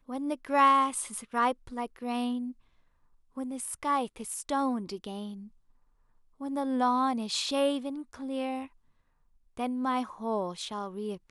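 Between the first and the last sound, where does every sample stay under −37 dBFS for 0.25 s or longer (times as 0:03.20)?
0:02.51–0:03.37
0:05.34–0:06.41
0:08.65–0:09.57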